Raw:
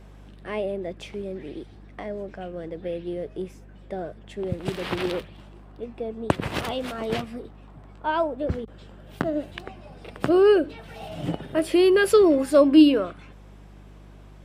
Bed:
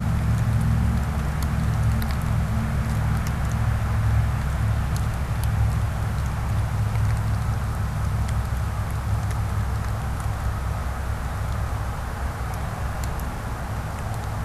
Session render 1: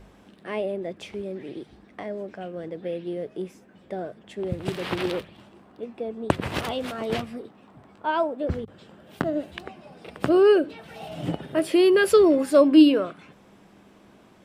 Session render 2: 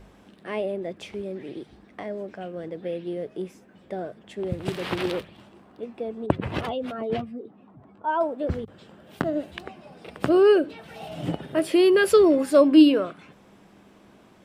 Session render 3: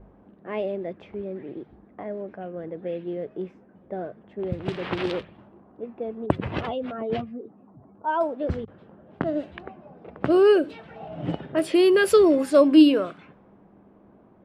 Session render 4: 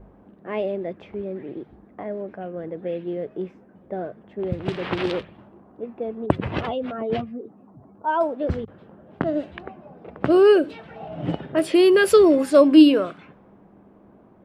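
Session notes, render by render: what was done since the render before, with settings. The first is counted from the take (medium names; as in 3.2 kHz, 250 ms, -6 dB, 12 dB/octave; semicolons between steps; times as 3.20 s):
de-hum 50 Hz, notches 3
6.26–8.21 s: spectral contrast enhancement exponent 1.5
level-controlled noise filter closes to 880 Hz, open at -18.5 dBFS
trim +2.5 dB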